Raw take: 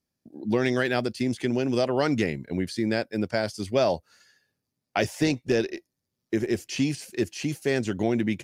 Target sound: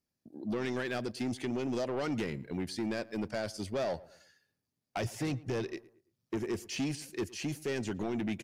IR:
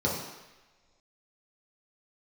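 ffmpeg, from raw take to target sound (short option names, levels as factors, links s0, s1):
-filter_complex "[0:a]asettb=1/sr,asplit=3[s0][s1][s2];[s0]atrim=end=4.974[s3];[s1]atrim=start=4.97:end=6.37,asetpts=PTS-STARTPTS,afade=t=in:d=0.004:c=qsin,afade=t=out:st=1.396:d=0.004:c=qsin,equalizer=f=120:w=1.9:g=9[s4];[s2]atrim=start=6.366[s5];[s3][s4]acrossfade=d=0.004:c1=hsin:c2=qsin[s6];[s6][s5]acrossfade=d=0.004:c1=qsin:c2=hsin,alimiter=limit=0.188:level=0:latency=1:release=181,asoftclip=type=tanh:threshold=0.0668,asplit=2[s7][s8];[s8]adelay=112,lowpass=f=1900:p=1,volume=0.1,asplit=2[s9][s10];[s10]adelay=112,lowpass=f=1900:p=1,volume=0.42,asplit=2[s11][s12];[s12]adelay=112,lowpass=f=1900:p=1,volume=0.42[s13];[s7][s9][s11][s13]amix=inputs=4:normalize=0,volume=0.596"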